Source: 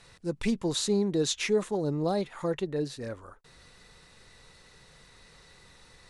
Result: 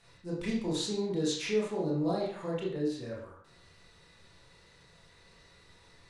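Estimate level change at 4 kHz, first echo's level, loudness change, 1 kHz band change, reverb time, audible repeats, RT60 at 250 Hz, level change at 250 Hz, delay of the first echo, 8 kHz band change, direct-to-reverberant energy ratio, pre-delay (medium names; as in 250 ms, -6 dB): -4.0 dB, no echo, -3.5 dB, -3.5 dB, 0.55 s, no echo, 0.50 s, -2.5 dB, no echo, -6.5 dB, -4.5 dB, 23 ms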